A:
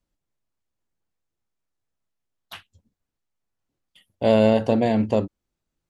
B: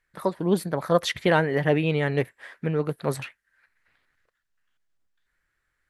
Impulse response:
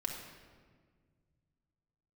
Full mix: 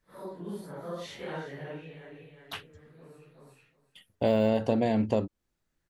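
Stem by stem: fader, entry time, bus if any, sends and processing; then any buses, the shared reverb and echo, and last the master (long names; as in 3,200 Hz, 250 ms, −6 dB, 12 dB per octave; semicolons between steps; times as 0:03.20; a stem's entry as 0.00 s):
+1.0 dB, 0.00 s, no send, no echo send, de-essing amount 90%
−9.5 dB, 0.00 s, no send, echo send −13 dB, random phases in long frames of 200 ms; downward compressor 1.5 to 1, threshold −38 dBFS, peak gain reduction 8 dB; automatic ducking −17 dB, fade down 1.00 s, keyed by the first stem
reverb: not used
echo: repeating echo 367 ms, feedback 16%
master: downward compressor 2 to 1, threshold −27 dBFS, peak gain reduction 9 dB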